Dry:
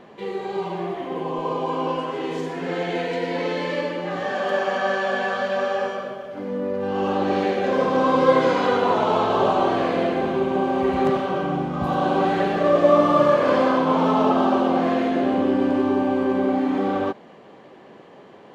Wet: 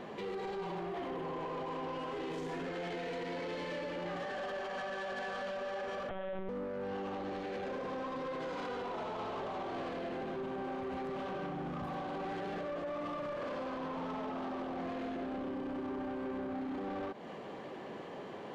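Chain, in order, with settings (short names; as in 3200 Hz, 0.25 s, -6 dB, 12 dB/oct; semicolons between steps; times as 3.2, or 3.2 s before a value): compressor, threshold -29 dBFS, peak gain reduction 17 dB; limiter -29.5 dBFS, peak gain reduction 10 dB; soft clip -36.5 dBFS, distortion -13 dB; 6.09–6.49 monotone LPC vocoder at 8 kHz 190 Hz; gain +1.5 dB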